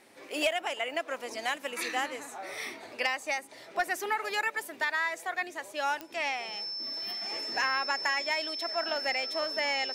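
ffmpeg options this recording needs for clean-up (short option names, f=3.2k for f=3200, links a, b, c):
-af "adeclick=t=4,bandreject=f=5.3k:w=30"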